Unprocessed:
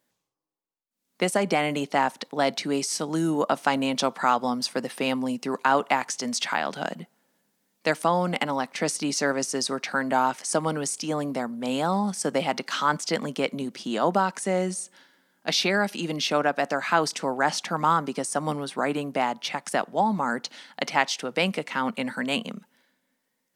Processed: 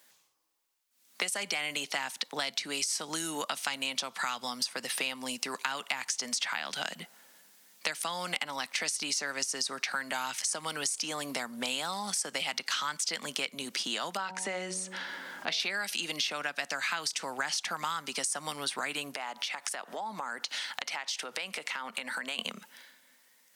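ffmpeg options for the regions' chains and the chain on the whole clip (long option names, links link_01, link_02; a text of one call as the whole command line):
ffmpeg -i in.wav -filter_complex "[0:a]asettb=1/sr,asplit=3[link_01][link_02][link_03];[link_01]atrim=end=14.174[link_04];[link_02]atrim=start=14.17:end=15.6,asetpts=PTS-STARTPTS,afade=type=in:duration=0.004:curve=qsin,afade=type=out:start_time=1.426:duration=0.004:curve=qsin,lowpass=frequency=1400:poles=1,bandreject=frequency=93.66:width_type=h:width=4,bandreject=frequency=187.32:width_type=h:width=4,bandreject=frequency=280.98:width_type=h:width=4,bandreject=frequency=374.64:width_type=h:width=4,bandreject=frequency=468.3:width_type=h:width=4,bandreject=frequency=561.96:width_type=h:width=4,bandreject=frequency=655.62:width_type=h:width=4,bandreject=frequency=749.28:width_type=h:width=4,bandreject=frequency=842.94:width_type=h:width=4,bandreject=frequency=936.6:width_type=h:width=4,acompressor=mode=upward:threshold=-36dB:ratio=2.5:attack=3.2:release=140:knee=2.83:detection=peak[link_05];[link_03]atrim=start=15.596[link_06];[link_04][link_05]acrossfade=duration=0.004:curve1=hsin:curve2=qsin[link_07];[link_07][link_06]acrossfade=duration=0.004:curve1=qsin:curve2=hsin,asettb=1/sr,asplit=3[link_08][link_09][link_10];[link_08]atrim=end=19.144[link_11];[link_09]atrim=start=19.14:end=22.39,asetpts=PTS-STARTPTS,afade=type=in:duration=0.004:curve=qsin,afade=type=out:start_time=3.246:duration=0.004:curve=qsin,equalizer=frequency=83:width_type=o:width=2:gain=-12.5,acompressor=threshold=-40dB:ratio=6:attack=3.2:release=140:knee=1:detection=peak[link_12];[link_10]atrim=start=22.386[link_13];[link_11][link_12]acrossfade=duration=0.004:curve1=hsin:curve2=qsin[link_14];[link_14][link_13]acrossfade=duration=0.004:curve1=qsin:curve2=hsin,acrossover=split=230|2000[link_15][link_16][link_17];[link_15]acompressor=threshold=-43dB:ratio=4[link_18];[link_16]acompressor=threshold=-36dB:ratio=4[link_19];[link_17]acompressor=threshold=-33dB:ratio=4[link_20];[link_18][link_19][link_20]amix=inputs=3:normalize=0,tiltshelf=frequency=640:gain=-9,acompressor=threshold=-39dB:ratio=3,volume=6dB" out.wav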